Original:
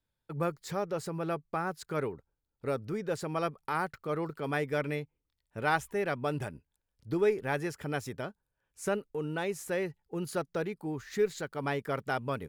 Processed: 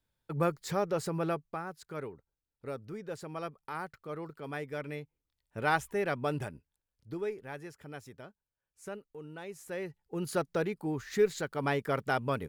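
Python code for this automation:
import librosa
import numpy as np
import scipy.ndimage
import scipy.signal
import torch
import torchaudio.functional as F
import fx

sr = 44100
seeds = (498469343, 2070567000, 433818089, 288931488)

y = fx.gain(x, sr, db=fx.line((1.24, 2.5), (1.66, -7.0), (4.81, -7.0), (5.58, 0.0), (6.32, 0.0), (7.49, -11.0), (9.41, -11.0), (10.34, 2.0)))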